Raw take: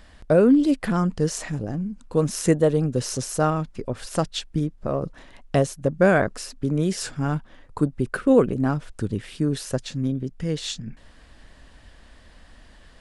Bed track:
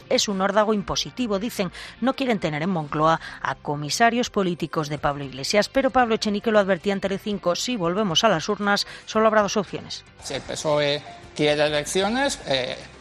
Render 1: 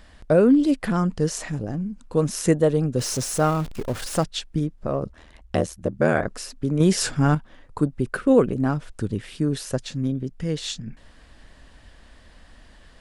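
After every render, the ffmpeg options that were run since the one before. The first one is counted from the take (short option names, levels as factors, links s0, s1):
-filter_complex "[0:a]asettb=1/sr,asplit=3[s0][s1][s2];[s0]atrim=end=2.994[s3];[s1]atrim=start=2.99:end=4.24,asetpts=PTS-STARTPTS,afade=t=in:d=0.004:c=qsin,afade=t=out:st=1.246:d=0.004:c=qsin,aeval=exprs='val(0)+0.5*0.0266*sgn(val(0))':c=same[s4];[s2]atrim=start=4.236[s5];[s3][s4]acrossfade=d=0.004:c1=hsin:c2=qsin[s6];[s6][s5]acrossfade=d=0.004:c1=qsin:c2=hsin,asplit=3[s7][s8][s9];[s7]afade=t=out:st=5.04:d=0.02[s10];[s8]aeval=exprs='val(0)*sin(2*PI*40*n/s)':c=same,afade=t=in:st=5.04:d=0.02,afade=t=out:st=6.24:d=0.02[s11];[s9]afade=t=in:st=6.24:d=0.02[s12];[s10][s11][s12]amix=inputs=3:normalize=0,asettb=1/sr,asplit=3[s13][s14][s15];[s13]atrim=end=6.804[s16];[s14]atrim=start=6.8:end=7.35,asetpts=PTS-STARTPTS,afade=t=in:d=0.004:c=qsin,afade=t=out:st=0.546:d=0.004:c=qsin,acontrast=56[s17];[s15]atrim=start=7.346[s18];[s16][s17]acrossfade=d=0.004:c1=hsin:c2=qsin[s19];[s19][s18]acrossfade=d=0.004:c1=qsin:c2=hsin"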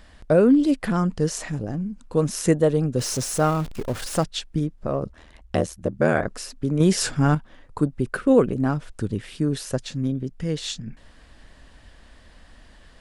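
-af anull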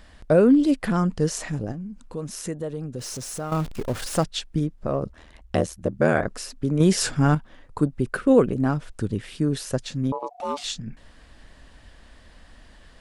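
-filter_complex "[0:a]asettb=1/sr,asplit=3[s0][s1][s2];[s0]atrim=end=1.724[s3];[s1]atrim=start=1.72:end=3.52,asetpts=PTS-STARTPTS,afade=t=in:d=0.004:c=qsin,afade=t=out:st=1.796:d=0.004:c=qsin,acompressor=threshold=0.0158:ratio=2:attack=3.2:release=140:knee=1:detection=peak[s4];[s2]atrim=start=3.516[s5];[s3][s4]acrossfade=d=0.004:c1=hsin:c2=qsin[s6];[s6][s5]acrossfade=d=0.004:c1=qsin:c2=hsin,asettb=1/sr,asplit=3[s7][s8][s9];[s7]atrim=end=10.124[s10];[s8]atrim=start=10.12:end=10.64,asetpts=PTS-STARTPTS,afade=t=in:d=0.004:c=qsin,afade=t=out:st=0.516:d=0.004:c=qsin,aeval=exprs='val(0)*sin(2*PI*720*n/s)':c=same[s11];[s9]atrim=start=10.636[s12];[s10][s11]acrossfade=d=0.004:c1=hsin:c2=qsin[s13];[s13][s12]acrossfade=d=0.004:c1=qsin:c2=hsin"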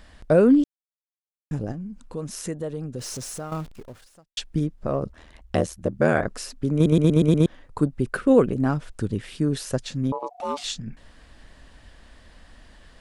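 -filter_complex "[0:a]asplit=10[s0][s1][s2][s3][s4][s5][s6][s7][s8][s9];[s0]atrim=end=0.64,asetpts=PTS-STARTPTS,afade=t=out:st=0.636:d=0.004:c=hsin[s10];[s1]atrim=start=0.64:end=1.51,asetpts=PTS-STARTPTS,volume=0[s11];[s2]atrim=start=1.51:end=4.37,asetpts=PTS-STARTPTS,afade=t=in:d=0.004:c=hsin,afade=t=out:st=1.74:d=1.12:c=qua[s12];[s3]atrim=start=4.37:end=6.862,asetpts=PTS-STARTPTS,afade=t=in:d=0.004:c=hsin[s13];[s4]atrim=start=6.738:end=6.862[s14];[s5]atrim=start=6.738:end=6.862[s15];[s6]atrim=start=6.738:end=6.862[s16];[s7]atrim=start=6.738:end=6.862[s17];[s8]atrim=start=6.738:end=6.862[s18];[s9]atrim=start=7.458[s19];[s10][s11][s12][s13]concat=n=4:v=0:a=1[s20];[s20][s14]acrossfade=d=0.004:c1=hsin:c2=hsin[s21];[s21][s15]acrossfade=d=0.004:c1=hsin:c2=hsin[s22];[s22][s16]acrossfade=d=0.004:c1=hsin:c2=hsin[s23];[s23][s17]acrossfade=d=0.004:c1=hsin:c2=hsin[s24];[s24][s18]acrossfade=d=0.004:c1=hsin:c2=hsin[s25];[s25][s19]acrossfade=d=0.004:c1=hsin:c2=hsin"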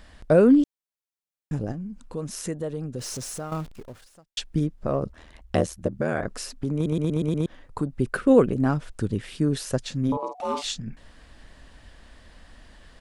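-filter_complex "[0:a]asettb=1/sr,asplit=3[s0][s1][s2];[s0]atrim=end=5.874[s3];[s1]atrim=start=5.87:end=7.91,asetpts=PTS-STARTPTS,afade=t=in:d=0.004:c=qsin,afade=t=out:st=2.036:d=0.004:c=qsin,acompressor=threshold=0.0708:ratio=2.5:attack=3.2:release=140:knee=1:detection=peak[s4];[s2]atrim=start=7.906[s5];[s3][s4]acrossfade=d=0.004:c1=hsin:c2=qsin[s6];[s6][s5]acrossfade=d=0.004:c1=qsin:c2=hsin,asplit=3[s7][s8][s9];[s7]afade=t=out:st=10.07:d=0.02[s10];[s8]asplit=2[s11][s12];[s12]adelay=49,volume=0.501[s13];[s11][s13]amix=inputs=2:normalize=0,afade=t=in:st=10.07:d=0.02,afade=t=out:st=10.63:d=0.02[s14];[s9]afade=t=in:st=10.63:d=0.02[s15];[s10][s14][s15]amix=inputs=3:normalize=0"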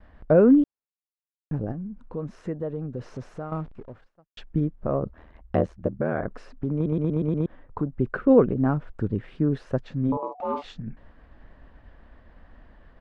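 -af "agate=range=0.0224:threshold=0.00447:ratio=3:detection=peak,lowpass=1500"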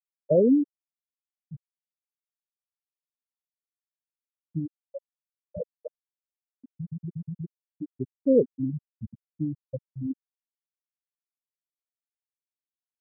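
-af "afftfilt=real='re*gte(hypot(re,im),0.562)':imag='im*gte(hypot(re,im),0.562)':win_size=1024:overlap=0.75,lowshelf=f=430:g=-5.5"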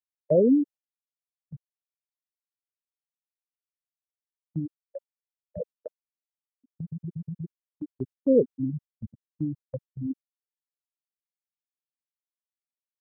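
-af "agate=range=0.158:threshold=0.00891:ratio=16:detection=peak"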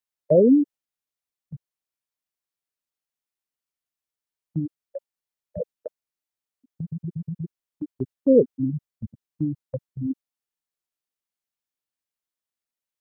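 -af "volume=1.58"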